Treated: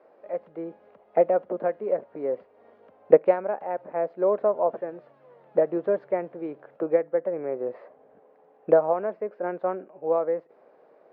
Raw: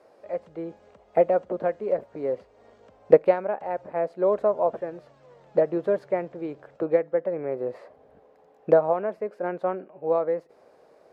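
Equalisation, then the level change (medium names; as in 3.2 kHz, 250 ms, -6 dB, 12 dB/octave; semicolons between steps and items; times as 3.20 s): band-pass 190–2500 Hz; distance through air 99 m; 0.0 dB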